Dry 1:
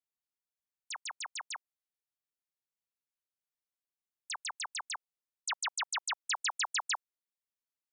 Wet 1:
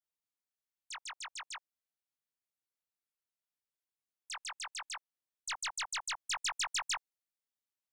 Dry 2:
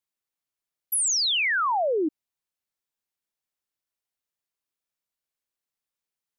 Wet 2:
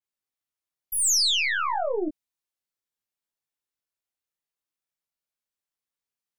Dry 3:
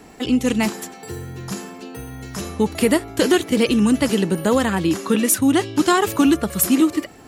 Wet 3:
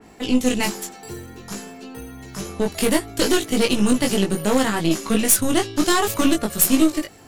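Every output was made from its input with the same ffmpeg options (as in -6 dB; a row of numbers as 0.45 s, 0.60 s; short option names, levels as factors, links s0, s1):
-af "aeval=exprs='0.668*(cos(1*acos(clip(val(0)/0.668,-1,1)))-cos(1*PI/2))+0.0531*(cos(4*acos(clip(val(0)/0.668,-1,1)))-cos(4*PI/2))+0.106*(cos(6*acos(clip(val(0)/0.668,-1,1)))-cos(6*PI/2))':c=same,flanger=delay=18.5:depth=2.1:speed=0.61,adynamicequalizer=threshold=0.0126:dfrequency=3000:dqfactor=0.7:tfrequency=3000:tqfactor=0.7:attack=5:release=100:ratio=0.375:range=3:mode=boostabove:tftype=highshelf"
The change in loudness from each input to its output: -2.0 LU, +0.5 LU, -1.0 LU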